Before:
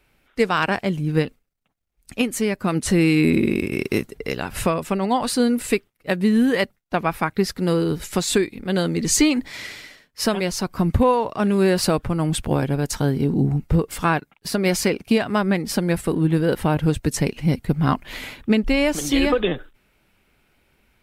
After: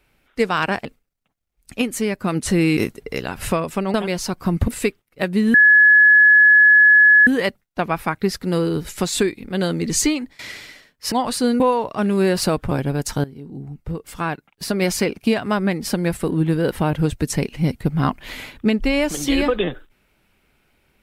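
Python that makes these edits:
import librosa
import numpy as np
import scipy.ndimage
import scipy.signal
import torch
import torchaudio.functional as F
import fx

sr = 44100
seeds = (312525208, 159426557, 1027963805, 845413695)

y = fx.edit(x, sr, fx.cut(start_s=0.85, length_s=0.4),
    fx.cut(start_s=3.17, length_s=0.74),
    fx.swap(start_s=5.08, length_s=0.48, other_s=10.27, other_length_s=0.74),
    fx.insert_tone(at_s=6.42, length_s=1.73, hz=1700.0, db=-7.5),
    fx.fade_out_to(start_s=9.12, length_s=0.42, floor_db=-19.0),
    fx.cut(start_s=12.12, length_s=0.43),
    fx.fade_in_from(start_s=13.08, length_s=1.4, curve='qua', floor_db=-17.0), tone=tone)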